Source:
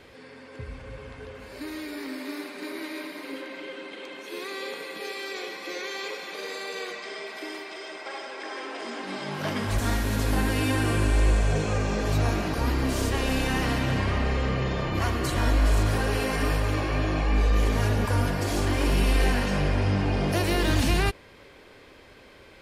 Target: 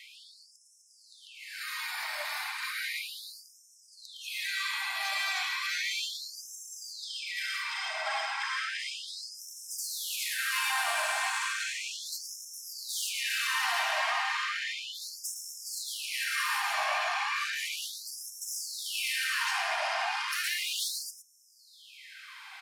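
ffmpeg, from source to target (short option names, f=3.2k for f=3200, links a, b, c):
-filter_complex "[0:a]highpass=f=380:w=0.5412,highpass=f=380:w=1.3066,asplit=2[a][b];[b]alimiter=limit=-23.5dB:level=0:latency=1,volume=3dB[c];[a][c]amix=inputs=2:normalize=0,asoftclip=type=tanh:threshold=-22.5dB,aecho=1:1:113:0.335,afftfilt=real='re*gte(b*sr/1024,600*pow(5300/600,0.5+0.5*sin(2*PI*0.34*pts/sr)))':imag='im*gte(b*sr/1024,600*pow(5300/600,0.5+0.5*sin(2*PI*0.34*pts/sr)))':win_size=1024:overlap=0.75,volume=-1dB"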